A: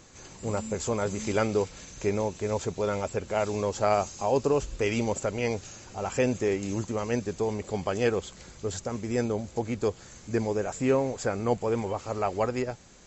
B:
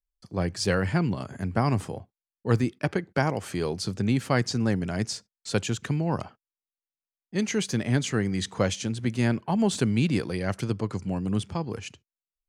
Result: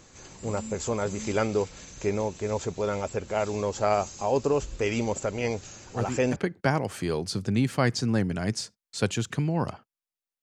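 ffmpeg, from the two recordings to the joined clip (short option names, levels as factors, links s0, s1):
-filter_complex "[1:a]asplit=2[s0][s1];[0:a]apad=whole_dur=10.42,atrim=end=10.42,atrim=end=6.362[s2];[s1]atrim=start=2.878:end=6.94[s3];[s0]atrim=start=1.92:end=2.88,asetpts=PTS-STARTPTS,volume=0.398,afade=t=in:d=0.004:c=hsin,afade=t=out:st=0.956:d=0.004:c=hsin,adelay=5400[s4];[s2][s3]acrossfade=d=0.004:c1=hsin:c2=hsin[s5];[s5][s4]amix=inputs=2:normalize=0"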